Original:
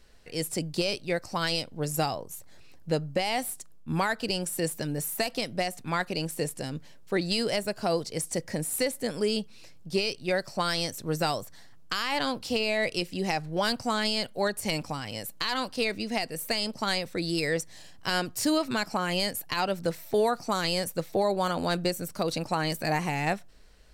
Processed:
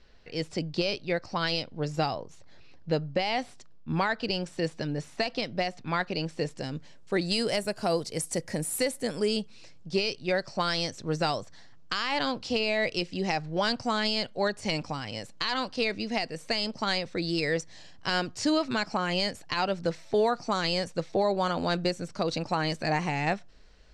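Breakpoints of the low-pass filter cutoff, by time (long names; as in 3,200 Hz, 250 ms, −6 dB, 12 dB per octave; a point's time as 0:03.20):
low-pass filter 24 dB per octave
0:06.32 5,300 Hz
0:07.60 12,000 Hz
0:08.71 12,000 Hz
0:09.99 6,600 Hz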